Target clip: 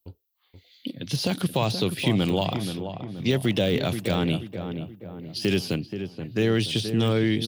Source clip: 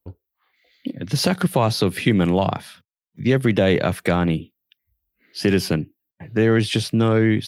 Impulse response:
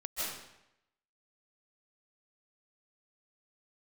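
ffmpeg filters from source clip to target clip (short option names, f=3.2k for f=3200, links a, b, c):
-filter_complex "[0:a]deesser=0.8,highshelf=f=2.4k:t=q:w=1.5:g=9.5,asplit=2[a][b];[b]adelay=478,lowpass=f=1.4k:p=1,volume=-8dB,asplit=2[c][d];[d]adelay=478,lowpass=f=1.4k:p=1,volume=0.5,asplit=2[e][f];[f]adelay=478,lowpass=f=1.4k:p=1,volume=0.5,asplit=2[g][h];[h]adelay=478,lowpass=f=1.4k:p=1,volume=0.5,asplit=2[i][j];[j]adelay=478,lowpass=f=1.4k:p=1,volume=0.5,asplit=2[k][l];[l]adelay=478,lowpass=f=1.4k:p=1,volume=0.5[m];[a][c][e][g][i][k][m]amix=inputs=7:normalize=0,volume=-5.5dB"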